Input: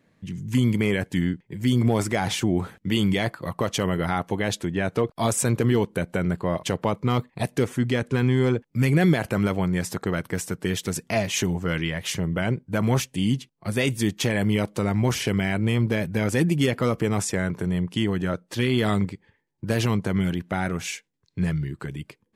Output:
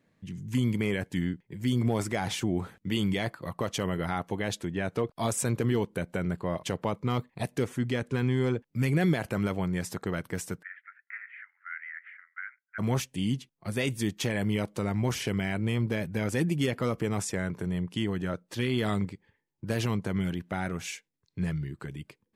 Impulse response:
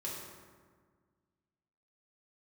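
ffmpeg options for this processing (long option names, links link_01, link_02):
-filter_complex "[0:a]asplit=3[link_01][link_02][link_03];[link_01]afade=type=out:start_time=10.61:duration=0.02[link_04];[link_02]asuperpass=centerf=1700:order=8:qfactor=2.1,afade=type=in:start_time=10.61:duration=0.02,afade=type=out:start_time=12.78:duration=0.02[link_05];[link_03]afade=type=in:start_time=12.78:duration=0.02[link_06];[link_04][link_05][link_06]amix=inputs=3:normalize=0,volume=-6dB"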